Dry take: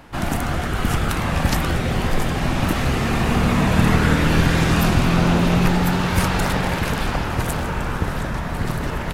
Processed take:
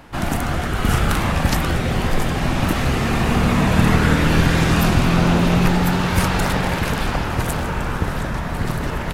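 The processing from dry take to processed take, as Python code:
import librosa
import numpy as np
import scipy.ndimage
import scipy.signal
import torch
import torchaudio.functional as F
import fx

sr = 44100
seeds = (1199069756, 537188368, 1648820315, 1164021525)

y = fx.doubler(x, sr, ms=40.0, db=-3.5, at=(0.8, 1.32))
y = F.gain(torch.from_numpy(y), 1.0).numpy()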